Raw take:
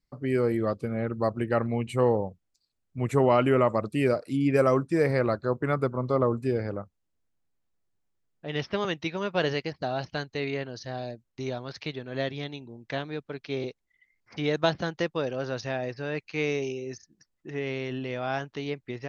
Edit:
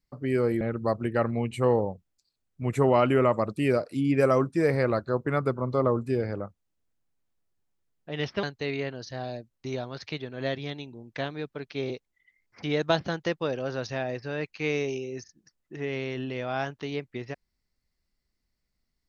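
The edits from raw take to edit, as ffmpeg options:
-filter_complex "[0:a]asplit=3[a][b][c];[a]atrim=end=0.612[d];[b]atrim=start=0.968:end=8.792[e];[c]atrim=start=10.168[f];[d][e]acrossfade=d=0.004:c1=hsin:c2=hsin[g];[g][f]acrossfade=d=0.004:c1=hsin:c2=hsin"

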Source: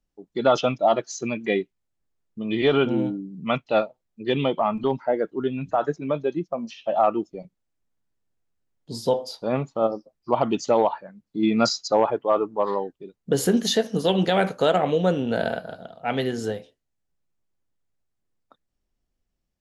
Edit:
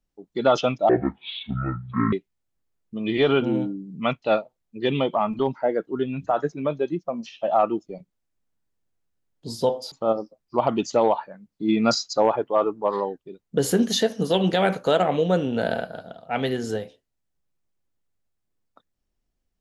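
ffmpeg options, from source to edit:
-filter_complex "[0:a]asplit=4[a][b][c][d];[a]atrim=end=0.894[e];[b]atrim=start=0.89:end=1.57,asetpts=PTS-STARTPTS,asetrate=24255,aresample=44100[f];[c]atrim=start=1.566:end=9.362[g];[d]atrim=start=9.658[h];[e][f]acrossfade=d=0.004:c1=hsin:c2=hsin[i];[i][g]acrossfade=d=0.004:c1=hsin:c2=hsin[j];[j][h]acrossfade=d=0.004:c1=hsin:c2=hsin"

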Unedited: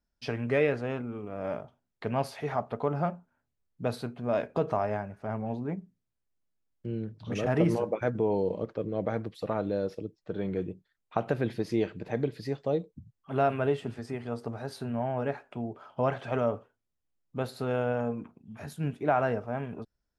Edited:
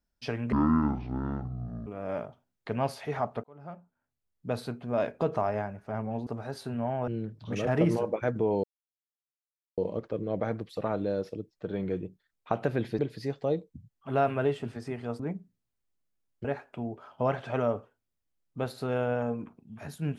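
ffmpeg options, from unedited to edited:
-filter_complex "[0:a]asplit=10[a][b][c][d][e][f][g][h][i][j];[a]atrim=end=0.524[k];[b]atrim=start=0.52:end=1.22,asetpts=PTS-STARTPTS,asetrate=22932,aresample=44100,atrim=end_sample=59365,asetpts=PTS-STARTPTS[l];[c]atrim=start=1.216:end=2.79,asetpts=PTS-STARTPTS,afade=t=out:st=1.57:d=0.004:c=hsin[m];[d]atrim=start=2.79:end=5.622,asetpts=PTS-STARTPTS,afade=t=in:d=1.23[n];[e]atrim=start=14.418:end=15.232[o];[f]atrim=start=6.868:end=8.43,asetpts=PTS-STARTPTS,afade=t=out:st=1.558:d=0.004:c=hsin,apad=pad_dur=1.14[p];[g]atrim=start=8.43:end=11.642,asetpts=PTS-STARTPTS,afade=t=in:d=0.004:c=hsin[q];[h]atrim=start=12.208:end=14.422[r];[i]atrim=start=5.618:end=6.872[s];[j]atrim=start=15.228[t];[k][l]acrossfade=d=0.004:c1=hsin:c2=hsin[u];[m][n]concat=n=2:v=0:a=1[v];[u][v]acrossfade=d=0.004:c1=hsin:c2=hsin[w];[w][o]acrossfade=d=0.004:c1=hsin:c2=hsin[x];[p][q]concat=n=2:v=0:a=1[y];[x][y]acrossfade=d=0.004:c1=hsin:c2=hsin[z];[z][r]acrossfade=d=0.004:c1=hsin:c2=hsin[aa];[aa][s]acrossfade=d=0.004:c1=hsin:c2=hsin[ab];[ab][t]acrossfade=d=0.004:c1=hsin:c2=hsin"

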